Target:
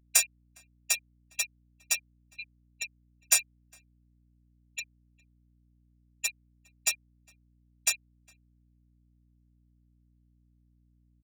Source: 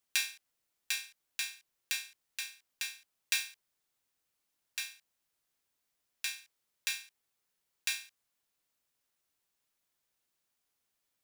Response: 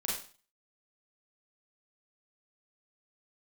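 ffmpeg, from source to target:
-filter_complex "[0:a]agate=range=0.0224:threshold=0.00251:ratio=3:detection=peak,afftfilt=real='re*gte(hypot(re,im),0.0501)':imag='im*gte(hypot(re,im),0.0501)':win_size=1024:overlap=0.75,asplit=2[s0][s1];[s1]alimiter=level_in=1.19:limit=0.0631:level=0:latency=1:release=106,volume=0.841,volume=1[s2];[s0][s2]amix=inputs=2:normalize=0,aeval=exprs='clip(val(0),-1,0.0422)':c=same,highpass=f=620:t=q:w=5.1,aeval=exprs='val(0)+0.000631*(sin(2*PI*60*n/s)+sin(2*PI*2*60*n/s)/2+sin(2*PI*3*60*n/s)/3+sin(2*PI*4*60*n/s)/4+sin(2*PI*5*60*n/s)/5)':c=same,aexciter=amount=8.6:drive=4.9:freq=5900,asplit=2[s3][s4];[s4]adelay=408.2,volume=0.0398,highshelf=f=4000:g=-9.18[s5];[s3][s5]amix=inputs=2:normalize=0"

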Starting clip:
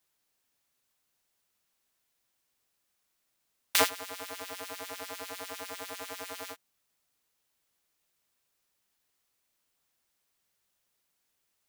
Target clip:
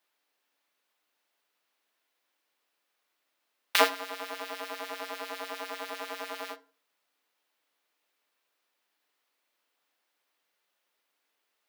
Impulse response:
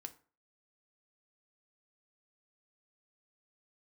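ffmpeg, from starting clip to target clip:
-filter_complex "[0:a]highpass=330,asplit=2[s0][s1];[1:a]atrim=start_sample=2205,lowpass=4400,lowshelf=f=100:g=-11.5[s2];[s1][s2]afir=irnorm=-1:irlink=0,volume=3.16[s3];[s0][s3]amix=inputs=2:normalize=0,volume=0.631"

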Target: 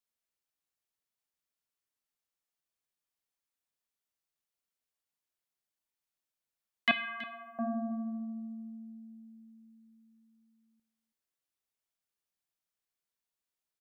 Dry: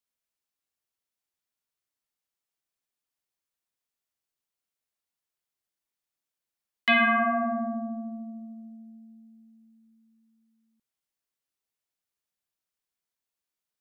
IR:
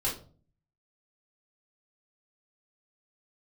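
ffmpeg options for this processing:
-filter_complex "[0:a]asettb=1/sr,asplit=3[s0][s1][s2];[s0]atrim=end=6.914[s3];[s1]atrim=start=6.91:end=7.59,asetpts=PTS-STARTPTS,afade=t=in:d=0.004:c=qsin,afade=t=out:st=0.676:d=0.004:c=qsin,aderivative[s4];[s2]atrim=start=7.586[s5];[s3][s4]acrossfade=d=0.004:c1=hsin:c2=qsin[s6];[s6][s5]acrossfade=d=0.004:c1=qsin:c2=hsin,aecho=1:1:326:0.158,asplit=2[s7][s8];[1:a]atrim=start_sample=2205,asetrate=36603,aresample=44100[s9];[s8][s9]afir=irnorm=-1:irlink=0,volume=0.0501[s10];[s7][s10]amix=inputs=2:normalize=0,volume=0.668"

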